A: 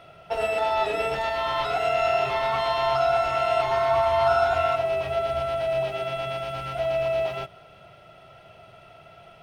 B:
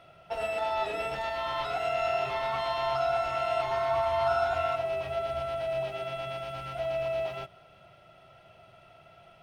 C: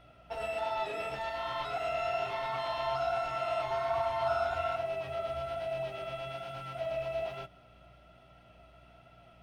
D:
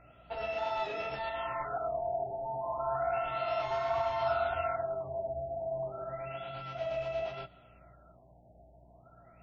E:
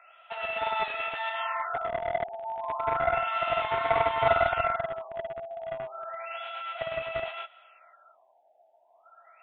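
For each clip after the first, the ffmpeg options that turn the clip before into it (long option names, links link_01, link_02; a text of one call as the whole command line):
ffmpeg -i in.wav -af "bandreject=frequency=440:width=12,volume=-6dB" out.wav
ffmpeg -i in.wav -af "aeval=exprs='val(0)+0.00158*(sin(2*PI*60*n/s)+sin(2*PI*2*60*n/s)/2+sin(2*PI*3*60*n/s)/3+sin(2*PI*4*60*n/s)/4+sin(2*PI*5*60*n/s)/5)':channel_layout=same,flanger=delay=6.5:depth=8.2:regen=-47:speed=1.2:shape=sinusoidal" out.wav
ffmpeg -i in.wav -af "afftfilt=real='re*lt(b*sr/1024,880*pow(7500/880,0.5+0.5*sin(2*PI*0.32*pts/sr)))':imag='im*lt(b*sr/1024,880*pow(7500/880,0.5+0.5*sin(2*PI*0.32*pts/sr)))':win_size=1024:overlap=0.75" out.wav
ffmpeg -i in.wav -filter_complex "[0:a]acrossover=split=800[link_01][link_02];[link_01]acrusher=bits=4:mix=0:aa=0.5[link_03];[link_03][link_02]amix=inputs=2:normalize=0,aresample=8000,aresample=44100,volume=8.5dB" out.wav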